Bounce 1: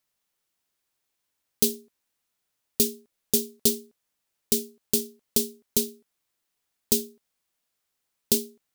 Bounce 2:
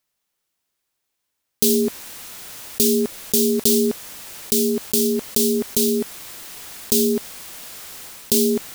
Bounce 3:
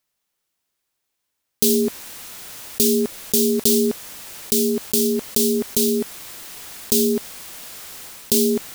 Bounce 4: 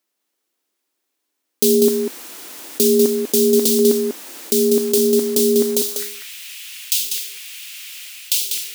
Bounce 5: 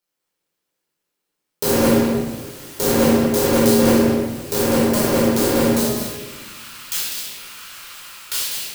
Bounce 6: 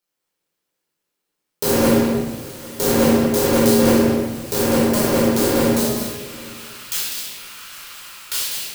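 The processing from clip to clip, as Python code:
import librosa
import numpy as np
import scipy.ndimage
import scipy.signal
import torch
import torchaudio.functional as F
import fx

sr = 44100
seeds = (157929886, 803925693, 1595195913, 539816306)

y1 = fx.sustainer(x, sr, db_per_s=20.0)
y1 = y1 * 10.0 ** (2.5 / 20.0)
y2 = y1
y3 = fx.filter_sweep_highpass(y2, sr, from_hz=300.0, to_hz=2600.0, start_s=5.62, end_s=6.12, q=2.8)
y3 = y3 + 10.0 ** (-5.5 / 20.0) * np.pad(y3, (int(195 * sr / 1000.0), 0))[:len(y3)]
y4 = fx.cycle_switch(y3, sr, every=2, mode='muted')
y4 = fx.room_shoebox(y4, sr, seeds[0], volume_m3=750.0, walls='mixed', distance_m=4.5)
y4 = y4 * 10.0 ** (-8.0 / 20.0)
y5 = y4 + 10.0 ** (-22.5 / 20.0) * np.pad(y4, (int(806 * sr / 1000.0), 0))[:len(y4)]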